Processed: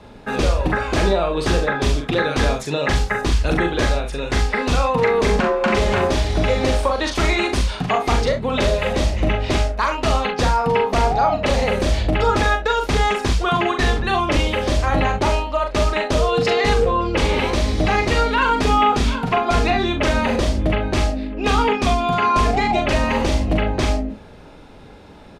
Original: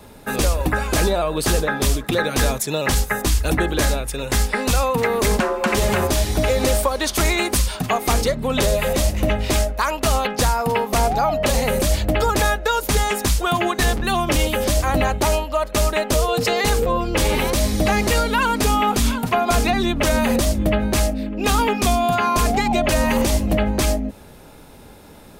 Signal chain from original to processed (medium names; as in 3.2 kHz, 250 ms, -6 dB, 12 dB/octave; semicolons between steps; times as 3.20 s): low-pass 4.3 kHz 12 dB/octave; early reflections 41 ms -4.5 dB, 69 ms -13 dB